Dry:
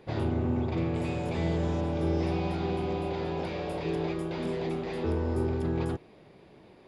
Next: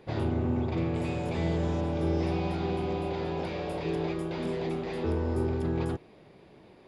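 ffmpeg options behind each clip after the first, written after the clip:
-af anull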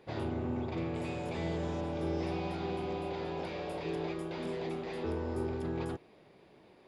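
-af "lowshelf=f=210:g=-6.5,volume=0.668"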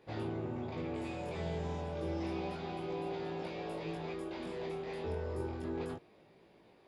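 -af "flanger=delay=17.5:depth=5.5:speed=0.3"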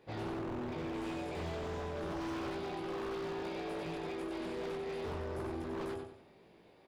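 -af "aecho=1:1:94|188|282|376:0.562|0.202|0.0729|0.0262,aeval=exprs='0.02*(abs(mod(val(0)/0.02+3,4)-2)-1)':c=same"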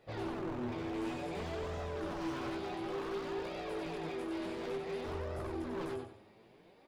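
-af "flanger=delay=1.5:depth=8.1:regen=37:speed=0.56:shape=sinusoidal,volume=1.58"

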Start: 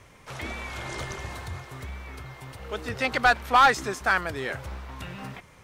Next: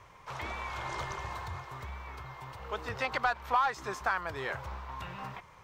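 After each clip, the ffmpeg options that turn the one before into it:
-af "equalizer=f=250:t=o:w=0.67:g=-7,equalizer=f=1000:t=o:w=0.67:g=10,equalizer=f=10000:t=o:w=0.67:g=-9,acompressor=threshold=0.0708:ratio=3,volume=0.562"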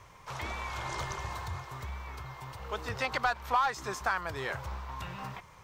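-af "bass=f=250:g=3,treble=f=4000:g=6"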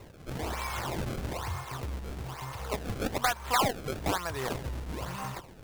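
-filter_complex "[0:a]asplit=2[s0][s1];[s1]acompressor=threshold=0.00891:ratio=6,volume=0.891[s2];[s0][s2]amix=inputs=2:normalize=0,acrusher=samples=27:mix=1:aa=0.000001:lfo=1:lforange=43.2:lforate=1.1"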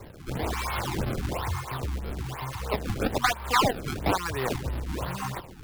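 -filter_complex "[0:a]acrossover=split=300|4900[s0][s1][s2];[s2]asoftclip=type=tanh:threshold=0.0188[s3];[s0][s1][s3]amix=inputs=3:normalize=0,afftfilt=real='re*(1-between(b*sr/1024,490*pow(7800/490,0.5+0.5*sin(2*PI*3*pts/sr))/1.41,490*pow(7800/490,0.5+0.5*sin(2*PI*3*pts/sr))*1.41))':imag='im*(1-between(b*sr/1024,490*pow(7800/490,0.5+0.5*sin(2*PI*3*pts/sr))/1.41,490*pow(7800/490,0.5+0.5*sin(2*PI*3*pts/sr))*1.41))':win_size=1024:overlap=0.75,volume=1.78"

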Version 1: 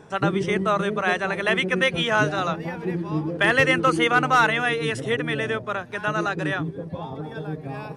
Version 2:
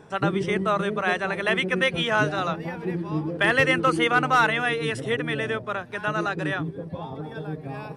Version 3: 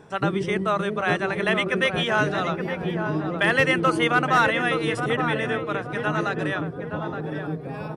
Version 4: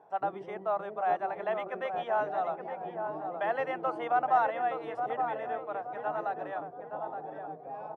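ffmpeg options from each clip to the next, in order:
-af "equalizer=f=6500:t=o:w=0.2:g=-5,volume=0.841"
-filter_complex "[0:a]asplit=2[s0][s1];[s1]adelay=870,lowpass=f=990:p=1,volume=0.596,asplit=2[s2][s3];[s3]adelay=870,lowpass=f=990:p=1,volume=0.52,asplit=2[s4][s5];[s5]adelay=870,lowpass=f=990:p=1,volume=0.52,asplit=2[s6][s7];[s7]adelay=870,lowpass=f=990:p=1,volume=0.52,asplit=2[s8][s9];[s9]adelay=870,lowpass=f=990:p=1,volume=0.52,asplit=2[s10][s11];[s11]adelay=870,lowpass=f=990:p=1,volume=0.52,asplit=2[s12][s13];[s13]adelay=870,lowpass=f=990:p=1,volume=0.52[s14];[s0][s2][s4][s6][s8][s10][s12][s14]amix=inputs=8:normalize=0"
-af "bandpass=f=750:t=q:w=4.9:csg=0,volume=1.26"

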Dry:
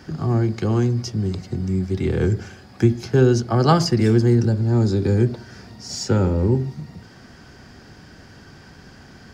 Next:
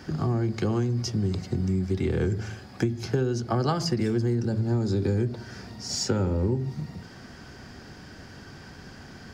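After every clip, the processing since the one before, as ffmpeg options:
-af "bandreject=f=55.11:t=h:w=4,bandreject=f=110.22:t=h:w=4,bandreject=f=165.33:t=h:w=4,acompressor=threshold=0.0794:ratio=6"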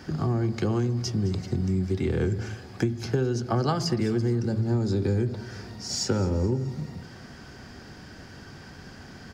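-af "aecho=1:1:214|428|642|856:0.126|0.0642|0.0327|0.0167"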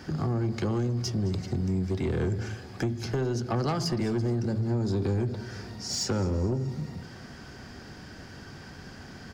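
-af "asoftclip=type=tanh:threshold=0.0841"

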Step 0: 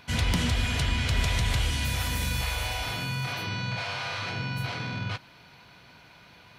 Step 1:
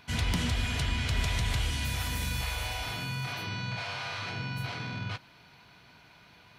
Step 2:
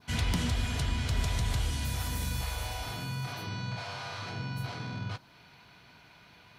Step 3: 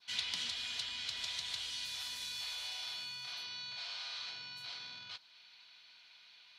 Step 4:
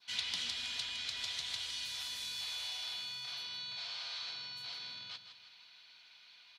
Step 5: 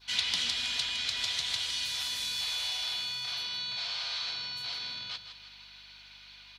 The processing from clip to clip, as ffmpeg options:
-af "bandreject=f=530:w=12,volume=0.668"
-af "adynamicequalizer=threshold=0.00282:dfrequency=2400:dqfactor=1:tfrequency=2400:tqfactor=1:attack=5:release=100:ratio=0.375:range=3.5:mode=cutabove:tftype=bell"
-af "bandpass=f=3900:t=q:w=2.1:csg=0,volume=1.58"
-af "aecho=1:1:161|322|483|644|805:0.335|0.141|0.0591|0.0248|0.0104"
-af "aeval=exprs='val(0)+0.000224*(sin(2*PI*50*n/s)+sin(2*PI*2*50*n/s)/2+sin(2*PI*3*50*n/s)/3+sin(2*PI*4*50*n/s)/4+sin(2*PI*5*50*n/s)/5)':c=same,volume=2.37"

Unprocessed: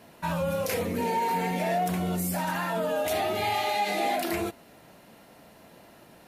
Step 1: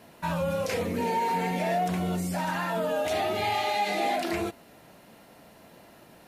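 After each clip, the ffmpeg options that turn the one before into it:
-filter_complex "[0:a]acrossover=split=8300[s0][s1];[s1]acompressor=threshold=0.00282:ratio=4:attack=1:release=60[s2];[s0][s2]amix=inputs=2:normalize=0"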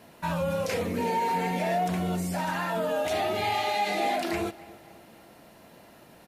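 -filter_complex "[0:a]asplit=2[s0][s1];[s1]adelay=277,lowpass=f=4100:p=1,volume=0.1,asplit=2[s2][s3];[s3]adelay=277,lowpass=f=4100:p=1,volume=0.52,asplit=2[s4][s5];[s5]adelay=277,lowpass=f=4100:p=1,volume=0.52,asplit=2[s6][s7];[s7]adelay=277,lowpass=f=4100:p=1,volume=0.52[s8];[s0][s2][s4][s6][s8]amix=inputs=5:normalize=0"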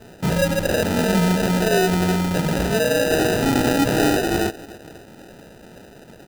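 -af "acrusher=samples=40:mix=1:aa=0.000001,volume=2.82"

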